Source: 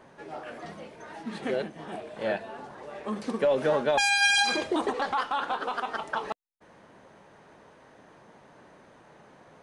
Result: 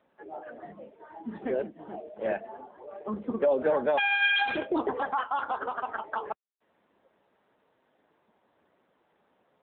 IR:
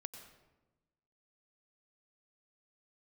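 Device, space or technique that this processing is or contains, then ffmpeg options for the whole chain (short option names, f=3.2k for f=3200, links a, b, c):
mobile call with aggressive noise cancelling: -af "highpass=f=180:w=0.5412,highpass=f=180:w=1.3066,equalizer=f=9.1k:t=o:w=0.68:g=-5.5,afftdn=nr=14:nf=-37" -ar 8000 -c:a libopencore_amrnb -b:a 7950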